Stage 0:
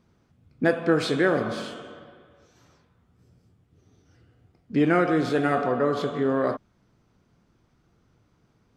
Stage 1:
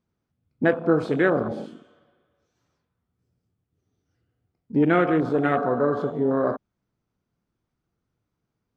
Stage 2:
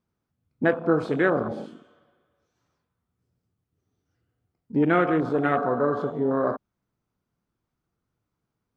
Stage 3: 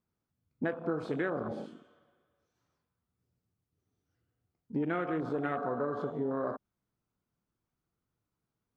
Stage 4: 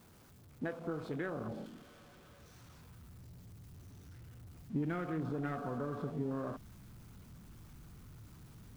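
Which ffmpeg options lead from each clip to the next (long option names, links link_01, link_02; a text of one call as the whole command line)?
ffmpeg -i in.wav -af "afwtdn=0.0398,volume=1.5dB" out.wav
ffmpeg -i in.wav -af "equalizer=frequency=1100:width=1.3:gain=3,volume=-2dB" out.wav
ffmpeg -i in.wav -af "acompressor=threshold=-24dB:ratio=4,volume=-5.5dB" out.wav
ffmpeg -i in.wav -af "aeval=exprs='val(0)+0.5*0.00422*sgn(val(0))':channel_layout=same,asubboost=boost=3.5:cutoff=230,volume=-6.5dB" out.wav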